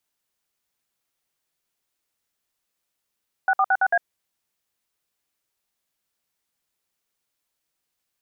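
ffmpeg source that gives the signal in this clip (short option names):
-f lavfi -i "aevalsrc='0.119*clip(min(mod(t,0.111),0.053-mod(t,0.111))/0.002,0,1)*(eq(floor(t/0.111),0)*(sin(2*PI*770*mod(t,0.111))+sin(2*PI*1477*mod(t,0.111)))+eq(floor(t/0.111),1)*(sin(2*PI*770*mod(t,0.111))+sin(2*PI*1209*mod(t,0.111)))+eq(floor(t/0.111),2)*(sin(2*PI*770*mod(t,0.111))+sin(2*PI*1477*mod(t,0.111)))+eq(floor(t/0.111),3)*(sin(2*PI*770*mod(t,0.111))+sin(2*PI*1477*mod(t,0.111)))+eq(floor(t/0.111),4)*(sin(2*PI*697*mod(t,0.111))+sin(2*PI*1633*mod(t,0.111))))':d=0.555:s=44100"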